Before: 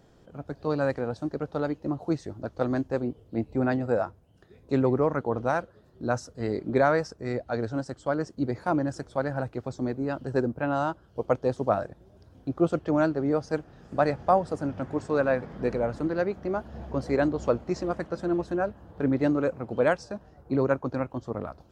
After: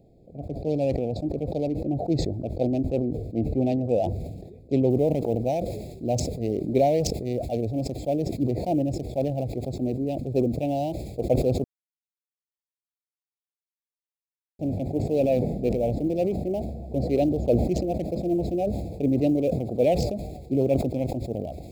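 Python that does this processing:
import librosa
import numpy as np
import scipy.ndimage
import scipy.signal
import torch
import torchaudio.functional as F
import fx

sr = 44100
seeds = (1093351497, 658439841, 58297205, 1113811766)

y = fx.noise_floor_step(x, sr, seeds[0], at_s=4.9, before_db=-69, after_db=-55, tilt_db=0.0)
y = fx.edit(y, sr, fx.silence(start_s=11.64, length_s=2.95), tone=tone)
y = fx.wiener(y, sr, points=15)
y = scipy.signal.sosfilt(scipy.signal.ellip(3, 1.0, 50, [710.0, 2400.0], 'bandstop', fs=sr, output='sos'), y)
y = fx.sustainer(y, sr, db_per_s=42.0)
y = F.gain(torch.from_numpy(y), 2.5).numpy()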